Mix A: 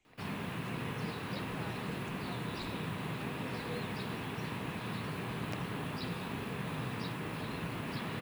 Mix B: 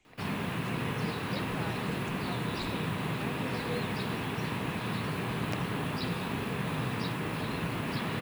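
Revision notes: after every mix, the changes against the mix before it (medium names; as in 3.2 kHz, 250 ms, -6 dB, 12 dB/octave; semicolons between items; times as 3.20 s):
speech +6.5 dB; background +5.5 dB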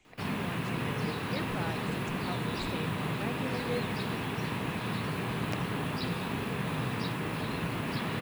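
speech +3.5 dB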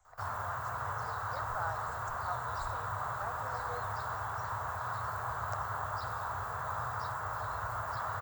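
master: add FFT filter 100 Hz 0 dB, 170 Hz -26 dB, 320 Hz -27 dB, 640 Hz 0 dB, 1.4 kHz +6 dB, 2.5 kHz -25 dB, 7.6 kHz +2 dB, 11 kHz -29 dB, 16 kHz +5 dB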